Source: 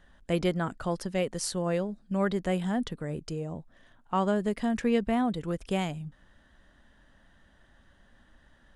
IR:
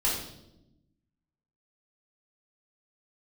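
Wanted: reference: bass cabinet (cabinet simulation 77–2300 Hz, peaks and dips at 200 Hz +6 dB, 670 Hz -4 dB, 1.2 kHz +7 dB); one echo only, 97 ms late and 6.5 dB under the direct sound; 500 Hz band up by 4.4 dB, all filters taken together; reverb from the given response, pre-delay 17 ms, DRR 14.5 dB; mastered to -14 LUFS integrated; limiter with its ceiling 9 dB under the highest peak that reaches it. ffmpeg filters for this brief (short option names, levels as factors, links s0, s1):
-filter_complex "[0:a]equalizer=f=500:t=o:g=6,alimiter=limit=0.1:level=0:latency=1,aecho=1:1:97:0.473,asplit=2[s0][s1];[1:a]atrim=start_sample=2205,adelay=17[s2];[s1][s2]afir=irnorm=-1:irlink=0,volume=0.0631[s3];[s0][s3]amix=inputs=2:normalize=0,highpass=f=77:w=0.5412,highpass=f=77:w=1.3066,equalizer=f=200:t=q:w=4:g=6,equalizer=f=670:t=q:w=4:g=-4,equalizer=f=1200:t=q:w=4:g=7,lowpass=f=2300:w=0.5412,lowpass=f=2300:w=1.3066,volume=5.31"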